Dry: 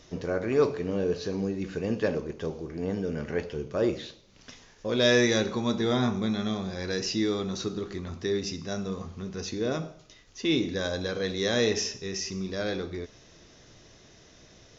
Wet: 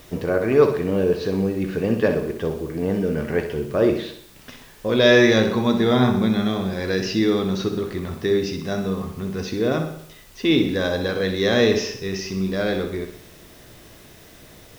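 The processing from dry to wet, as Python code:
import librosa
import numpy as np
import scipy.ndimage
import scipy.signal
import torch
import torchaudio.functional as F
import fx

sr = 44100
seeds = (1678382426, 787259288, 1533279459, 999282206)

p1 = scipy.signal.sosfilt(scipy.signal.butter(2, 3700.0, 'lowpass', fs=sr, output='sos'), x)
p2 = fx.quant_dither(p1, sr, seeds[0], bits=10, dither='triangular')
p3 = p2 + fx.echo_feedback(p2, sr, ms=63, feedback_pct=50, wet_db=-9.5, dry=0)
y = p3 * 10.0 ** (7.5 / 20.0)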